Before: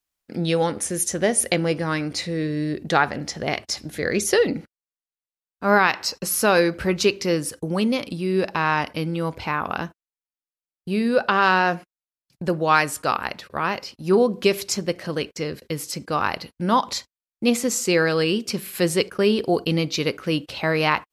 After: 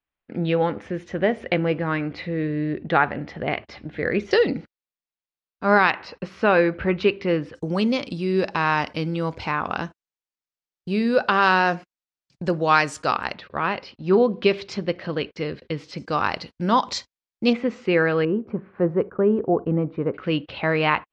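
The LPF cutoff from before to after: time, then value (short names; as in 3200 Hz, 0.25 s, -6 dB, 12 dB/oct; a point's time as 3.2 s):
LPF 24 dB/oct
2900 Hz
from 4.31 s 5200 Hz
from 5.9 s 3000 Hz
from 7.55 s 6900 Hz
from 13.34 s 3900 Hz
from 15.98 s 6500 Hz
from 17.53 s 2700 Hz
from 18.25 s 1300 Hz
from 20.14 s 3300 Hz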